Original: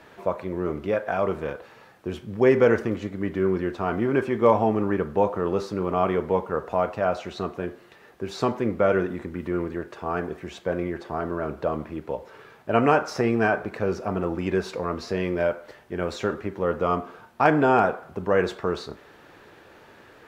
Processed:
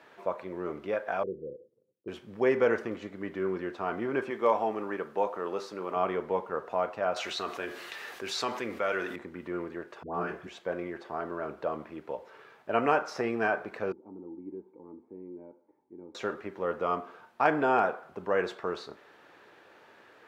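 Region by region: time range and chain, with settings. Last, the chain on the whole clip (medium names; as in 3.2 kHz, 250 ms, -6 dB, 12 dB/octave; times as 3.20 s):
1.23–2.08 s: rippled Chebyshev low-pass 530 Hz, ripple 3 dB + expander -51 dBFS
4.30–5.96 s: high-pass 300 Hz 6 dB/octave + treble shelf 4.5 kHz +4.5 dB
7.16–9.16 s: tilt shelf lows -7.5 dB, about 1.4 kHz + band-stop 170 Hz, Q 5.6 + level flattener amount 50%
10.03–10.47 s: tone controls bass +5 dB, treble 0 dB + phase dispersion highs, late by 118 ms, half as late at 830 Hz + flutter echo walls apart 4.8 m, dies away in 0.23 s
13.92–16.15 s: cascade formant filter u + peaking EQ 680 Hz -12 dB 0.4 oct + tape noise reduction on one side only encoder only
whole clip: high-pass 430 Hz 6 dB/octave; treble shelf 6.5 kHz -8 dB; trim -4 dB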